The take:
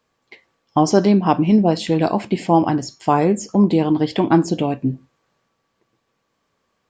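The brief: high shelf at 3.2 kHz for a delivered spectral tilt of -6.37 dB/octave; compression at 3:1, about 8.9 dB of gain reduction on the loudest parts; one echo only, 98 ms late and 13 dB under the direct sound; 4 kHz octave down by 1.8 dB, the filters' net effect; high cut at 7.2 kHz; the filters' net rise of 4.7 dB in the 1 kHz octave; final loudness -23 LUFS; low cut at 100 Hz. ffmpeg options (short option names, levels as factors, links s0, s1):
-af "highpass=100,lowpass=7200,equalizer=f=1000:t=o:g=6,highshelf=f=3200:g=5,equalizer=f=4000:t=o:g=-6.5,acompressor=threshold=0.112:ratio=3,aecho=1:1:98:0.224"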